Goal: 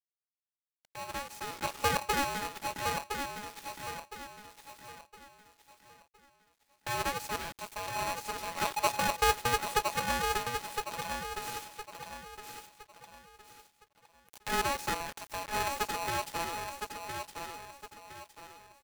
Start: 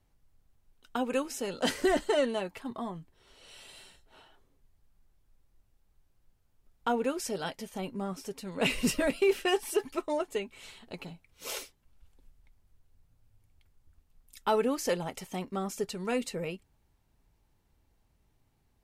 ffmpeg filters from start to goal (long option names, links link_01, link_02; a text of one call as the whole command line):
ffmpeg -i in.wav -filter_complex "[0:a]acrossover=split=530[link_01][link_02];[link_02]acompressor=threshold=-41dB:ratio=5[link_03];[link_01][link_03]amix=inputs=2:normalize=0,aeval=exprs='max(val(0),0)':channel_layout=same,equalizer=frequency=530:width=4.1:gain=-6.5,acrusher=bits=7:mix=0:aa=0.000001,dynaudnorm=framelen=240:gausssize=11:maxgain=10.5dB,adynamicequalizer=threshold=0.00891:dfrequency=1000:dqfactor=0.99:tfrequency=1000:tqfactor=0.99:attack=5:release=100:ratio=0.375:range=2.5:mode=boostabove:tftype=bell,aecho=1:1:1013|2026|3039|4052:0.501|0.18|0.065|0.0234,aeval=exprs='val(0)*sgn(sin(2*PI*840*n/s))':channel_layout=same,volume=-8dB" out.wav